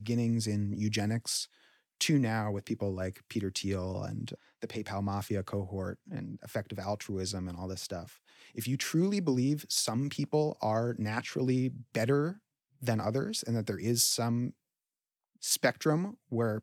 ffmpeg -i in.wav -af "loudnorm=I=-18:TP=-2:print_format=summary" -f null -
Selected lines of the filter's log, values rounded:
Input Integrated:    -32.2 LUFS
Input True Peak:     -14.0 dBTP
Input LRA:             5.5 LU
Input Threshold:     -42.5 LUFS